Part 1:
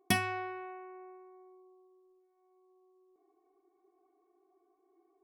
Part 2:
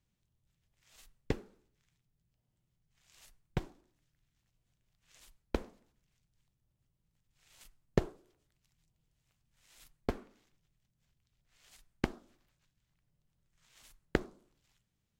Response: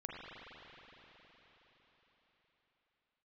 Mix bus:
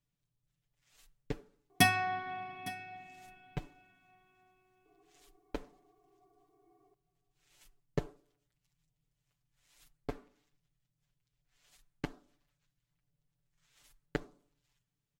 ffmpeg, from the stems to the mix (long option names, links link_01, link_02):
-filter_complex "[0:a]adelay=1700,volume=0dB,asplit=3[link_01][link_02][link_03];[link_02]volume=-12.5dB[link_04];[link_03]volume=-17.5dB[link_05];[1:a]volume=-7.5dB[link_06];[2:a]atrim=start_sample=2205[link_07];[link_04][link_07]afir=irnorm=-1:irlink=0[link_08];[link_05]aecho=0:1:859:1[link_09];[link_01][link_06][link_08][link_09]amix=inputs=4:normalize=0,aecho=1:1:6.9:0.9"